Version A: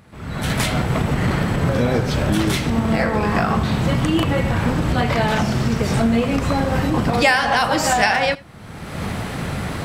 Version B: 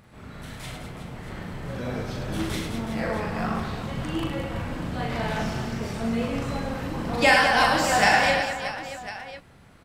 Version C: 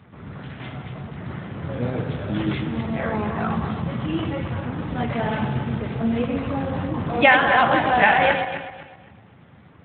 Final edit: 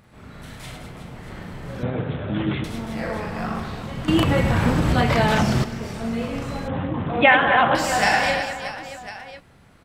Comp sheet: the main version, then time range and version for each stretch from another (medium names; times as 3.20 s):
B
1.83–2.64 s: from C
4.08–5.64 s: from A
6.68–7.75 s: from C